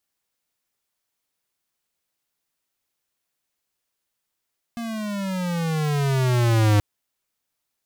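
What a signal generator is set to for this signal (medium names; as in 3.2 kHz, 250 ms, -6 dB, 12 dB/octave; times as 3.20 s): gliding synth tone square, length 2.03 s, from 236 Hz, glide -14.5 st, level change +14 dB, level -16 dB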